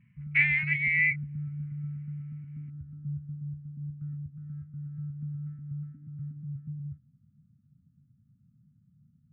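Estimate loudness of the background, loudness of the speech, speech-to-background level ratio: -39.0 LUFS, -24.5 LUFS, 14.5 dB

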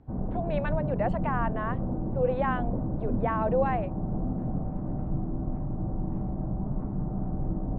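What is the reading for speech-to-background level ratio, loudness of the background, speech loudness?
1.5 dB, -32.5 LUFS, -31.0 LUFS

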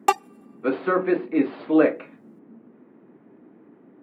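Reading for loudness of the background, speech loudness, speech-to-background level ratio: -27.0 LUFS, -23.0 LUFS, 4.0 dB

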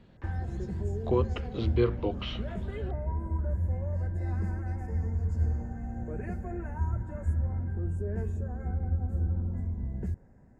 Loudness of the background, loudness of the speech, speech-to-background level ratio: -33.5 LUFS, -31.5 LUFS, 2.0 dB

